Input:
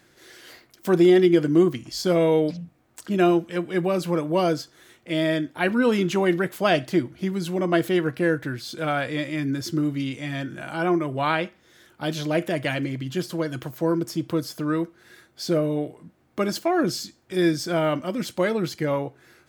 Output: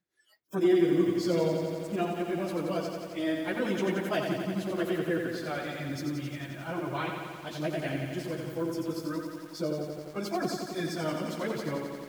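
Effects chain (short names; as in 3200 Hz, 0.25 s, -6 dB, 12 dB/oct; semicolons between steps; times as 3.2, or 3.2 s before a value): plain phase-vocoder stretch 0.62×; spectral noise reduction 23 dB; lo-fi delay 88 ms, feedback 80%, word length 8-bit, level -5 dB; gain -6.5 dB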